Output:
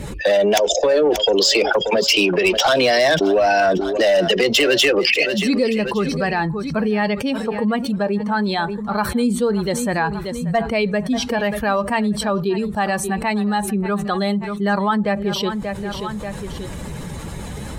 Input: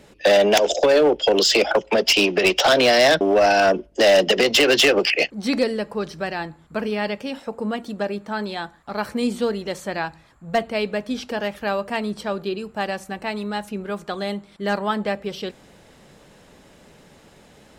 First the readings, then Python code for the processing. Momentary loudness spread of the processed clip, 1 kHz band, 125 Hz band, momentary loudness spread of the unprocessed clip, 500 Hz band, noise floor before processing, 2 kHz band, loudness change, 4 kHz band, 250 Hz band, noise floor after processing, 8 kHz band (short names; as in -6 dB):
11 LU, +3.0 dB, +9.5 dB, 14 LU, +1.5 dB, -51 dBFS, +1.5 dB, +2.0 dB, +1.0 dB, +5.5 dB, -30 dBFS, +2.5 dB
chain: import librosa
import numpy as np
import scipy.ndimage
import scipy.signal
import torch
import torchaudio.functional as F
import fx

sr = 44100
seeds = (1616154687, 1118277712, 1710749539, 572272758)

y = fx.bin_expand(x, sr, power=1.5)
y = fx.echo_feedback(y, sr, ms=584, feedback_pct=30, wet_db=-19.5)
y = fx.env_flatten(y, sr, amount_pct=70)